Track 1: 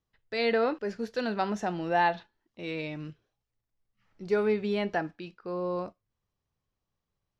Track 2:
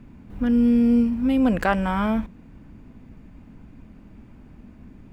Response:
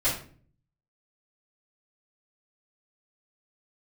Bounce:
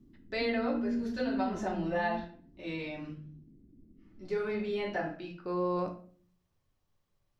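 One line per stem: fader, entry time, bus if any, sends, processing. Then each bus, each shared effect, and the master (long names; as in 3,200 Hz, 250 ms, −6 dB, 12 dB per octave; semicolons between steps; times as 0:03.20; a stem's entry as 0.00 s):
+2.5 dB, 0.00 s, send −16.5 dB, automatic ducking −16 dB, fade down 0.80 s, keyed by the second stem
−6.0 dB, 0.00 s, no send, transistor ladder low-pass 390 Hz, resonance 60%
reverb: on, RT60 0.45 s, pre-delay 3 ms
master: downward compressor 2.5 to 1, threshold −29 dBFS, peak gain reduction 5.5 dB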